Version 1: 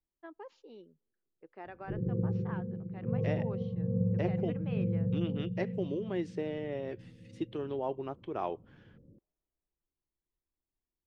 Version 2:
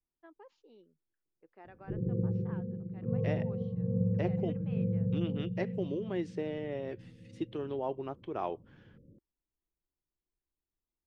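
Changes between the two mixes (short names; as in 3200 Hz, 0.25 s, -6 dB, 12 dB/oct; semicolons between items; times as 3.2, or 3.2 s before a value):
first voice -7.0 dB; reverb: off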